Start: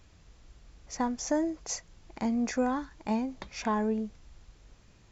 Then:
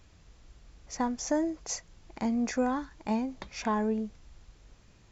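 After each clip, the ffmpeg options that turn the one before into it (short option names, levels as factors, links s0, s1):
-af anull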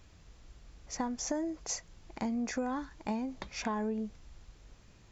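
-af "acompressor=threshold=0.0282:ratio=5"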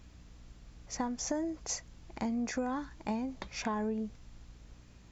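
-af "aeval=exprs='val(0)+0.00158*(sin(2*PI*60*n/s)+sin(2*PI*2*60*n/s)/2+sin(2*PI*3*60*n/s)/3+sin(2*PI*4*60*n/s)/4+sin(2*PI*5*60*n/s)/5)':c=same"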